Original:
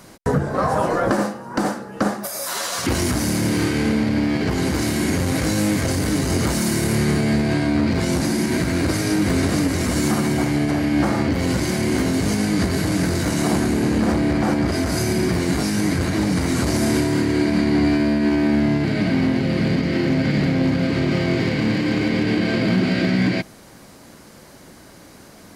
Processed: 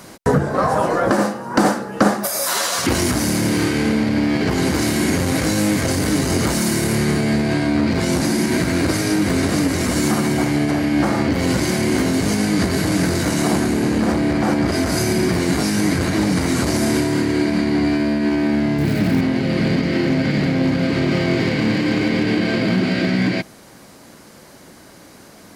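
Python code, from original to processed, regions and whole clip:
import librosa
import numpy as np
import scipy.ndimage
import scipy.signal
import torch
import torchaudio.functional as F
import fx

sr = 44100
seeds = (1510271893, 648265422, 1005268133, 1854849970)

y = fx.chain(x, sr, fx.crossing_spikes(level_db=-26.5),
    fx.low_shelf(hz=150.0, db=10.5),
    fx.doppler_dist(depth_ms=0.17), at=(18.78, 19.21))
y = fx.low_shelf(y, sr, hz=90.0, db=-7.0)
y = fx.rider(y, sr, range_db=10, speed_s=0.5)
y = F.gain(torch.from_numpy(y), 2.5).numpy()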